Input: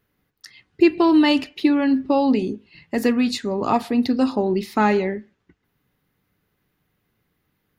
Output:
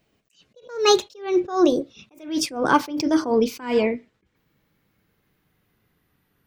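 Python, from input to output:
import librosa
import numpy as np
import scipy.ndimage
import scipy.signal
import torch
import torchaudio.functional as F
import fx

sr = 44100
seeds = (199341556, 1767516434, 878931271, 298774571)

y = fx.speed_glide(x, sr, from_pct=148, to_pct=93)
y = fx.attack_slew(y, sr, db_per_s=140.0)
y = y * 10.0 ** (3.0 / 20.0)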